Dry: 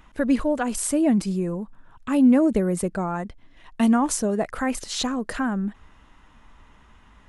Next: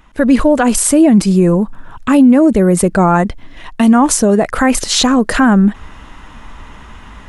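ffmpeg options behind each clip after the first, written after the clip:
-af "dynaudnorm=f=130:g=3:m=13.5dB,alimiter=level_in=5.5dB:limit=-1dB:release=50:level=0:latency=1,volume=-1dB"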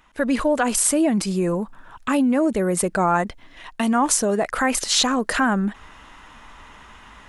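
-af "lowshelf=f=360:g=-10.5,volume=-5dB"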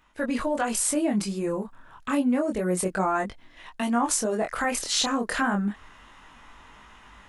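-af "flanger=delay=20:depth=5.7:speed=0.29,volume=-2.5dB"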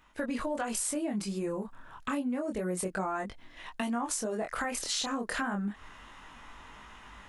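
-af "acompressor=threshold=-31dB:ratio=4"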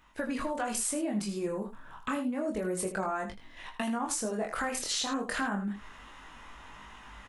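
-af "aecho=1:1:19|79:0.299|0.299"

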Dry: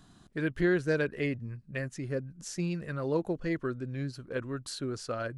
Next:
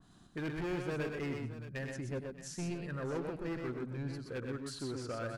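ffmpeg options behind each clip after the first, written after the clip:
-af "volume=30.5dB,asoftclip=hard,volume=-30.5dB,aecho=1:1:98|124|224|623:0.251|0.631|0.126|0.211,adynamicequalizer=threshold=0.00355:dfrequency=2500:dqfactor=0.7:tfrequency=2500:tqfactor=0.7:attack=5:release=100:ratio=0.375:range=2:mode=cutabove:tftype=highshelf,volume=-4.5dB"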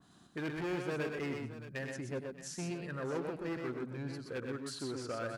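-af "highpass=f=180:p=1,volume=1.5dB"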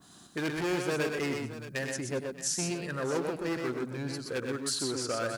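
-af "bass=f=250:g=-3,treble=f=4k:g=9,volume=6.5dB"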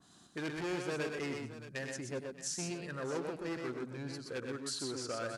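-af "lowpass=9.4k,volume=-6.5dB"

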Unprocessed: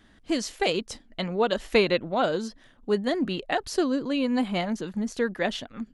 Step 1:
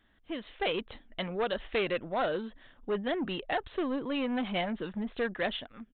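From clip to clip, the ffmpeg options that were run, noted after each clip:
-af "dynaudnorm=f=150:g=7:m=10dB,aresample=8000,asoftclip=type=tanh:threshold=-13.5dB,aresample=44100,equalizer=f=190:t=o:w=2.5:g=-5.5,volume=-8.5dB"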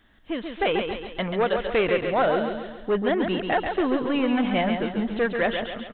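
-filter_complex "[0:a]asplit=2[a][b];[b]aecho=0:1:137|274|411|548|685|822:0.501|0.236|0.111|0.052|0.0245|0.0115[c];[a][c]amix=inputs=2:normalize=0,acrossover=split=3000[d][e];[e]acompressor=threshold=-57dB:ratio=4:attack=1:release=60[f];[d][f]amix=inputs=2:normalize=0,volume=8dB"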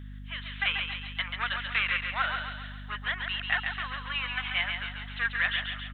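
-af "highpass=f=1.3k:w=0.5412,highpass=f=1.3k:w=1.3066,aeval=exprs='val(0)+0.00708*(sin(2*PI*50*n/s)+sin(2*PI*2*50*n/s)/2+sin(2*PI*3*50*n/s)/3+sin(2*PI*4*50*n/s)/4+sin(2*PI*5*50*n/s)/5)':c=same,volume=2.5dB"

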